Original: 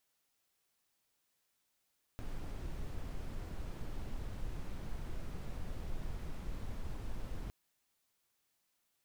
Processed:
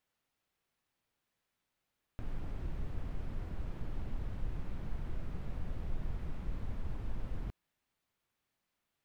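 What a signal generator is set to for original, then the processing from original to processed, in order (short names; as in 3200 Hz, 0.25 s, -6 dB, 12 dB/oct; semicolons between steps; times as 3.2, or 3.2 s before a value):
noise brown, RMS -39.5 dBFS 5.31 s
tone controls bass +4 dB, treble -10 dB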